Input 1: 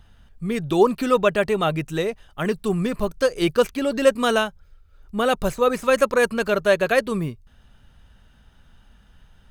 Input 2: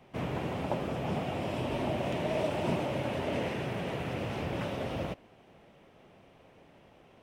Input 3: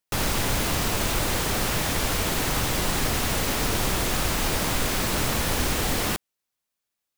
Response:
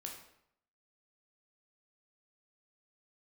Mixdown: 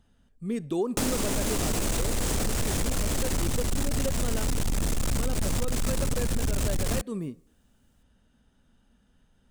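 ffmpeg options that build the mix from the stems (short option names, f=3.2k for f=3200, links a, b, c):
-filter_complex "[0:a]volume=-14.5dB,asplit=2[a][b];[b]volume=-15.5dB[c];[2:a]asubboost=boost=8.5:cutoff=100,asoftclip=type=tanh:threshold=-15.5dB,adelay=850,volume=1.5dB[d];[3:a]atrim=start_sample=2205[e];[c][e]afir=irnorm=-1:irlink=0[f];[a][d][f]amix=inputs=3:normalize=0,equalizer=f=250:t=o:w=1:g=11,equalizer=f=500:t=o:w=1:g=5,equalizer=f=8k:t=o:w=1:g=9,acompressor=threshold=-24dB:ratio=6"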